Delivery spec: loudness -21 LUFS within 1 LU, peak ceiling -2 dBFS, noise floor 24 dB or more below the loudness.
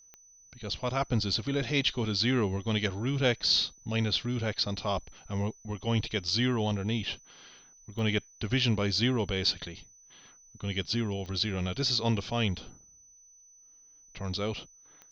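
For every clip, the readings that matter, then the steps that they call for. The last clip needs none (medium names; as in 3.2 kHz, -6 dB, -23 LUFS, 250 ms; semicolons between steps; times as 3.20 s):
clicks found 4; steady tone 6 kHz; tone level -55 dBFS; loudness -30.0 LUFS; peak level -13.0 dBFS; loudness target -21.0 LUFS
-> de-click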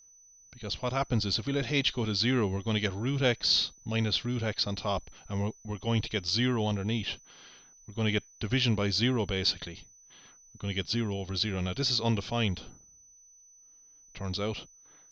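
clicks found 0; steady tone 6 kHz; tone level -55 dBFS
-> band-stop 6 kHz, Q 30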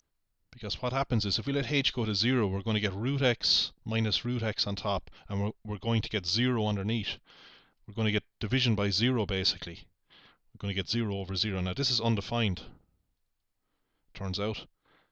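steady tone not found; loudness -30.0 LUFS; peak level -13.0 dBFS; loudness target -21.0 LUFS
-> trim +9 dB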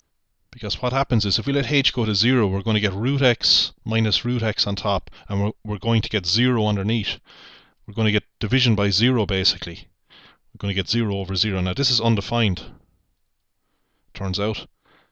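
loudness -21.0 LUFS; peak level -4.0 dBFS; noise floor -70 dBFS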